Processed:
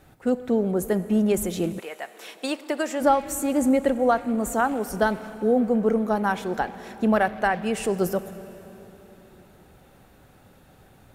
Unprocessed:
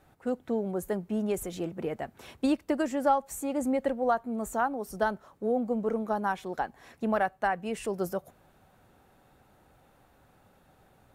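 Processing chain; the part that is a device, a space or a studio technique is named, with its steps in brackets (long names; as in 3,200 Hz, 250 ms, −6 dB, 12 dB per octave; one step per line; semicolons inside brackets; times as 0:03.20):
saturated reverb return (on a send at −11.5 dB: convolution reverb RT60 3.1 s, pre-delay 22 ms + soft clipping −27.5 dBFS, distortion −11 dB)
0:01.78–0:03.00: on the sum: high-pass filter 950 Hz → 440 Hz 12 dB per octave
parametric band 910 Hz −5 dB 1.5 octaves
level +9 dB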